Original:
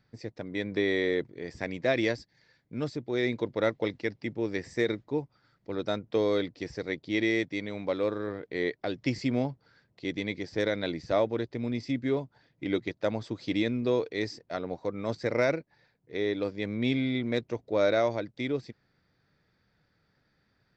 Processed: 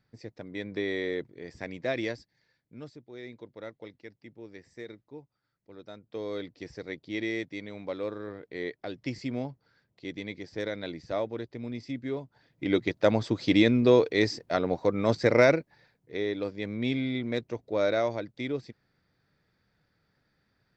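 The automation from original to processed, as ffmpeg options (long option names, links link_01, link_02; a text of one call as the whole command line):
ffmpeg -i in.wav -af "volume=18dB,afade=type=out:start_time=1.94:duration=1.12:silence=0.281838,afade=type=in:start_time=5.95:duration=0.69:silence=0.316228,afade=type=in:start_time=12.21:duration=0.94:silence=0.251189,afade=type=out:start_time=15.26:duration=1.01:silence=0.375837" out.wav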